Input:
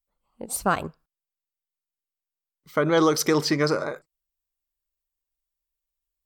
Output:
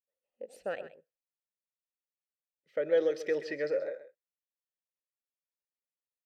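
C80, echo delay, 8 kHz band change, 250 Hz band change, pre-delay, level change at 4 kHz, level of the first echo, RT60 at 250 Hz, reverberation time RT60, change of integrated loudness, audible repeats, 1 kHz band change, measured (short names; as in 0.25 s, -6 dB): none, 0.13 s, under -25 dB, -17.5 dB, none, -20.0 dB, -13.5 dB, none, none, -9.0 dB, 1, -22.5 dB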